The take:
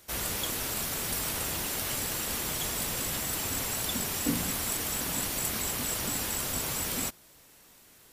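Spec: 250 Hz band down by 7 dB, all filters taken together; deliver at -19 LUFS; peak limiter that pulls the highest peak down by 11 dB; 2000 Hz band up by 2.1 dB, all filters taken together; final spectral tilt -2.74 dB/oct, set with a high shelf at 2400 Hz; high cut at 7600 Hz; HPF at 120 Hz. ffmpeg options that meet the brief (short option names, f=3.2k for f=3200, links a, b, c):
-af "highpass=120,lowpass=7.6k,equalizer=f=250:t=o:g=-8.5,equalizer=f=2k:t=o:g=4.5,highshelf=f=2.4k:g=-3.5,volume=20dB,alimiter=limit=-11.5dB:level=0:latency=1"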